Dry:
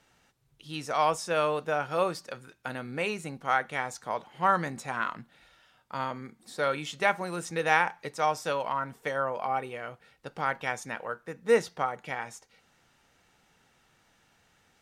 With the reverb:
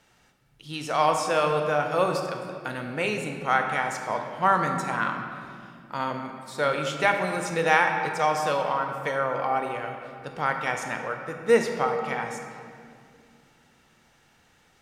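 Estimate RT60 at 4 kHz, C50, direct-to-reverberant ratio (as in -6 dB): 1.5 s, 5.0 dB, 4.0 dB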